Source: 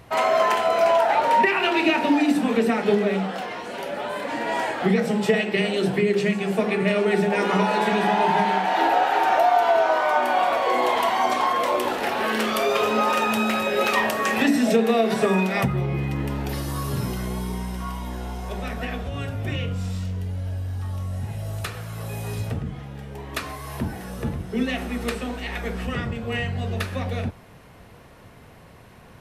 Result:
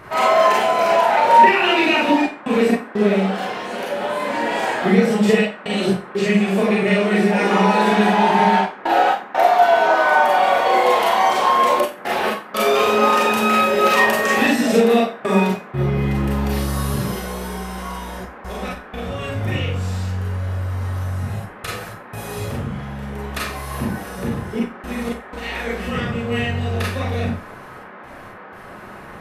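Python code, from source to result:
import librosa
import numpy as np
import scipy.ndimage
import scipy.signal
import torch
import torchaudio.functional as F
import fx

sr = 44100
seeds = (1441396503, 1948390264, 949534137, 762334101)

y = fx.step_gate(x, sr, bpm=61, pattern='xxxxxxxxx.x.x', floor_db=-60.0, edge_ms=4.5)
y = fx.dmg_noise_band(y, sr, seeds[0], low_hz=170.0, high_hz=1700.0, level_db=-44.0)
y = fx.rev_schroeder(y, sr, rt60_s=0.32, comb_ms=30, drr_db=-3.5)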